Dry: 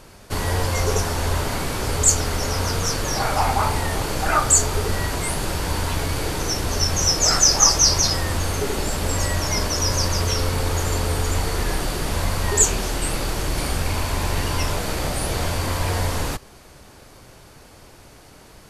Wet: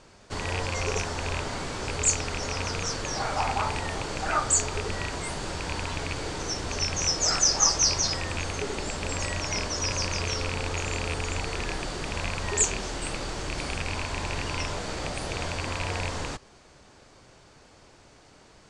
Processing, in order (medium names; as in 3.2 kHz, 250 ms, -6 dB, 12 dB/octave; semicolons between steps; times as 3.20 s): rattle on loud lows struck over -20 dBFS, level -12 dBFS; steep low-pass 8.3 kHz 36 dB/octave; bass shelf 130 Hz -5 dB; trim -6.5 dB